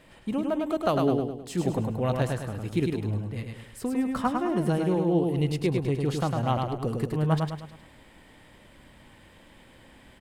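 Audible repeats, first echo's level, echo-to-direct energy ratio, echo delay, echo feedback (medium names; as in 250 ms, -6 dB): 5, -4.0 dB, -3.0 dB, 104 ms, 43%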